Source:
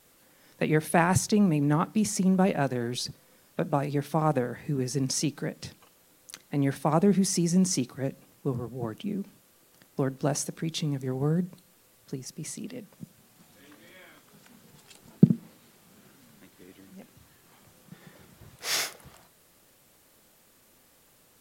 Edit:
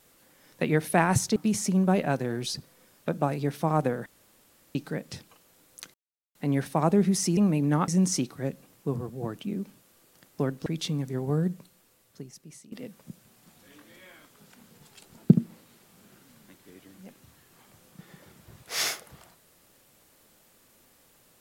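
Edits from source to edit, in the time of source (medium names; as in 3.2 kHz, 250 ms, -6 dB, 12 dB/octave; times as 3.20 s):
1.36–1.87 s: move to 7.47 s
4.57–5.26 s: room tone
6.45 s: insert silence 0.41 s
10.25–10.59 s: delete
11.40–12.65 s: fade out, to -16 dB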